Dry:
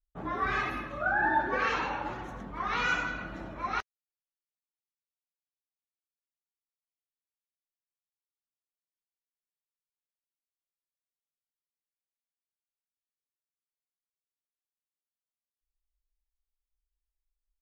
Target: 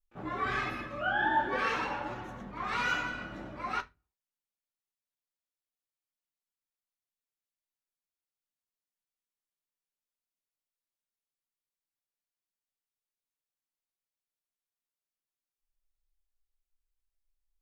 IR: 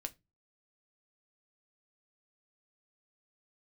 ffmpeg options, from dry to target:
-filter_complex "[1:a]atrim=start_sample=2205,asetrate=41013,aresample=44100[link_01];[0:a][link_01]afir=irnorm=-1:irlink=0,asplit=2[link_02][link_03];[link_03]asetrate=88200,aresample=44100,atempo=0.5,volume=-16dB[link_04];[link_02][link_04]amix=inputs=2:normalize=0"

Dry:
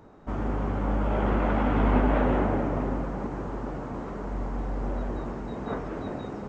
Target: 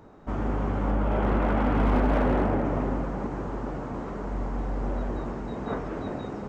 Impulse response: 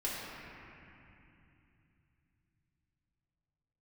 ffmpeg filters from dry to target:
-filter_complex "[0:a]asettb=1/sr,asplit=3[link_01][link_02][link_03];[link_01]atrim=end=0.914[link_04];[link_02]atrim=start=0.91:end=2.65,asetpts=PTS-STARTPTS,afade=type=in:duration=0.004:curve=qsin,afade=type=out:start_time=1.736:duration=0.004:curve=qsin,highshelf=frequency=3500:gain=-5.5[link_05];[link_03]atrim=start=2.646[link_06];[link_04][link_05]acrossfade=duration=0.004:curve1=hsin:curve2=qsin[link_07];[link_07][link_06]acrossfade=duration=0.004:curve1=qsin:curve2=hsin,asoftclip=type=hard:threshold=-18dB,volume=1dB"

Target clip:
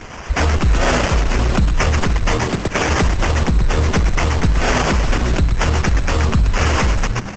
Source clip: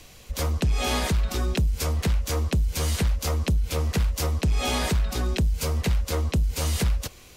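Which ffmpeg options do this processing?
ffmpeg -i in.wav -filter_complex "[0:a]asettb=1/sr,asplit=3[link_01][link_02][link_03];[link_01]atrim=end=2.314[link_04];[link_02]atrim=start=2.31:end=2.89,asetpts=PTS-STARTPTS,afade=type=in:duration=0.004:curve=qsin,afade=type=out:start_time=0.576:duration=0.004:curve=qsin,highpass=170[link_05];[link_03]atrim=start=2.886[link_06];[link_04][link_05]acrossfade=duration=0.004:curve1=hsin:curve2=qsin[link_07];[link_07][link_06]acrossfade=duration=0.004:curve1=qsin:curve2=hsin,aemphasis=mode=production:type=cd,asplit=3[link_08][link_09][link_10];[link_08]afade=type=out:start_time=3.81:duration=0.02[link_11];[link_09]bandreject=frequency=380:width=12,afade=type=in:start_time=3.81:duration=0.02,afade=type=out:start_time=4.58:duration=0.02[link_12];[link_10]afade=type=in:start_time=4.58:duration=0.02[link_13];[link_11][link_12][link_13]amix=inputs=3:normalize=0,asplit=3[link_14][link_15][link_16];[link_14]afade=type=out:start_time=5.78:duration=0.02[link_17];[link_15]adynamicequalizer=threshold=0.00501:dfrequency=7500:dqfactor=1.8:tfrequency=7500:tqfactor=1.8:attack=5:release=100:ratio=0.375:range=1.5:mode=boostabove:tftype=bell,afade=type=in:start_time=5.78:duration=0.02,afade=type=out:start_time=6.59:duration=0.02[link_18];[link_16]afade=type=in:start_time=6.59:duration=0.02[link_19];[link_17][link_18][link_19]amix=inputs=3:normalize=0,acrusher=samples=11:mix=1:aa=0.000001,acontrast=78,asplit=6[link_20][link_21][link_22][link_23][link_24][link_25];[link_21]adelay=125,afreqshift=-85,volume=-4.5dB[link_26];[link_22]adelay=250,afreqshift=-170,volume=-13.1dB[link_27];[link_23]adelay=375,afreqshift=-255,volume=-21.8dB[link_28];[link_24]adelay=500,afreqshift=-340,volume=-30.4dB[link_29];[link_25]adelay=625,afreqshift=-425,volume=-39dB[link_30];[link_20][link_26][link_27][link_28][link_29][link_30]amix=inputs=6:normalize=0,alimiter=level_in=12dB:limit=-1dB:release=50:level=0:latency=1,volume=-6dB" -ar 48000 -c:a libopus -b:a 10k out.opus

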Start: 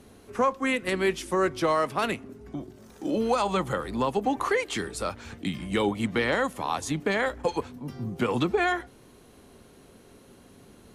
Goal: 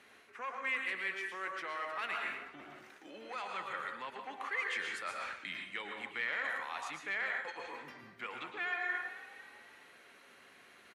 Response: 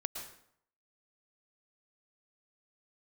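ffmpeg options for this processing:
-filter_complex "[0:a]highshelf=frequency=4800:gain=-6.5[link_01];[1:a]atrim=start_sample=2205[link_02];[link_01][link_02]afir=irnorm=-1:irlink=0,asoftclip=type=tanh:threshold=-16.5dB,asplit=5[link_03][link_04][link_05][link_06][link_07];[link_04]adelay=251,afreqshift=38,volume=-22dB[link_08];[link_05]adelay=502,afreqshift=76,volume=-27.7dB[link_09];[link_06]adelay=753,afreqshift=114,volume=-33.4dB[link_10];[link_07]adelay=1004,afreqshift=152,volume=-39dB[link_11];[link_03][link_08][link_09][link_10][link_11]amix=inputs=5:normalize=0,areverse,acompressor=threshold=-35dB:ratio=6,areverse,highpass=frequency=1000:poles=1,equalizer=frequency=2000:width_type=o:width=1.5:gain=14.5,volume=-5dB" -ar 48000 -c:a libmp3lame -b:a 80k

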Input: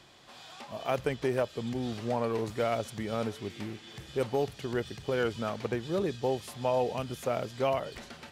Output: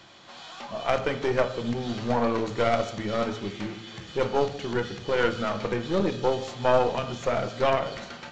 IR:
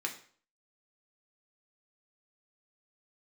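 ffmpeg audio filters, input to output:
-filter_complex "[0:a]aresample=16000,aresample=44100,asplit=2[link_01][link_02];[1:a]atrim=start_sample=2205,asetrate=27342,aresample=44100[link_03];[link_02][link_03]afir=irnorm=-1:irlink=0,volume=-3.5dB[link_04];[link_01][link_04]amix=inputs=2:normalize=0,aeval=exprs='0.355*(cos(1*acos(clip(val(0)/0.355,-1,1)))-cos(1*PI/2))+0.0631*(cos(4*acos(clip(val(0)/0.355,-1,1)))-cos(4*PI/2))':channel_layout=same"

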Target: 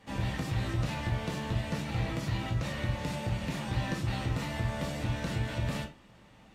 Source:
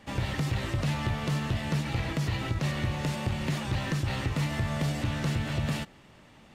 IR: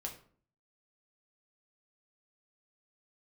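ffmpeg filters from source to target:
-filter_complex "[1:a]atrim=start_sample=2205,afade=type=out:start_time=0.18:duration=0.01,atrim=end_sample=8379,asetrate=52920,aresample=44100[link_01];[0:a][link_01]afir=irnorm=-1:irlink=0"

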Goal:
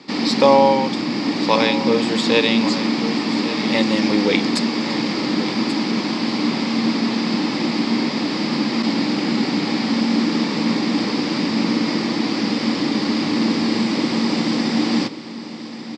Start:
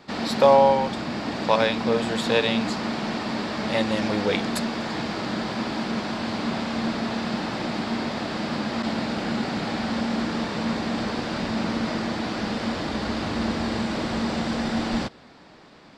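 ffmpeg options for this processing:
ffmpeg -i in.wav -af "highpass=frequency=140:width=0.5412,highpass=frequency=140:width=1.3066,equalizer=frequency=290:width_type=q:width=4:gain=9,equalizer=frequency=660:width_type=q:width=4:gain=-9,equalizer=frequency=1500:width_type=q:width=4:gain=-8,equalizer=frequency=2200:width_type=q:width=4:gain=4,equalizer=frequency=5000:width_type=q:width=4:gain=8,lowpass=frequency=8500:width=0.5412,lowpass=frequency=8500:width=1.3066,aecho=1:1:1135:0.224,volume=5dB" out.wav

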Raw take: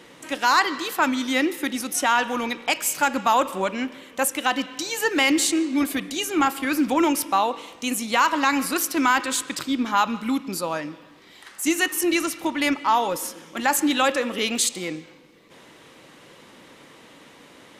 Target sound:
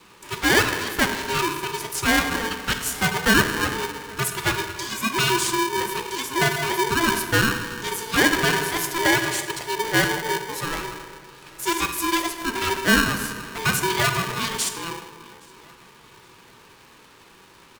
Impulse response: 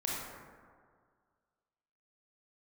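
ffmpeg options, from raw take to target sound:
-filter_complex "[0:a]asplit=2[link_01][link_02];[link_02]adelay=819,lowpass=frequency=3800:poles=1,volume=-22.5dB,asplit=2[link_03][link_04];[link_04]adelay=819,lowpass=frequency=3800:poles=1,volume=0.48,asplit=2[link_05][link_06];[link_06]adelay=819,lowpass=frequency=3800:poles=1,volume=0.48[link_07];[link_01][link_03][link_05][link_07]amix=inputs=4:normalize=0,adynamicequalizer=threshold=0.0178:dfrequency=930:dqfactor=2.5:tfrequency=930:tqfactor=2.5:attack=5:release=100:ratio=0.375:range=3:mode=boostabove:tftype=bell,flanger=delay=3.6:depth=3.1:regen=-65:speed=0.31:shape=triangular,asplit=2[link_08][link_09];[1:a]atrim=start_sample=2205[link_10];[link_09][link_10]afir=irnorm=-1:irlink=0,volume=-7.5dB[link_11];[link_08][link_11]amix=inputs=2:normalize=0,aeval=exprs='val(0)*sgn(sin(2*PI*670*n/s))':channel_layout=same,volume=-1.5dB"

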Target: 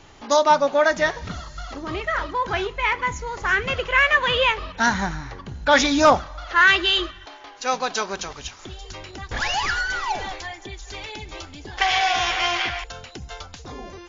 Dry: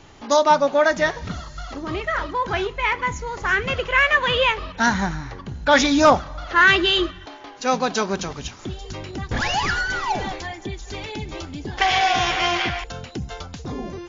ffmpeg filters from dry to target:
ffmpeg -i in.wav -af "asetnsamples=nb_out_samples=441:pad=0,asendcmd='6.26 equalizer g -12',equalizer=frequency=180:width=0.54:gain=-3.5" out.wav

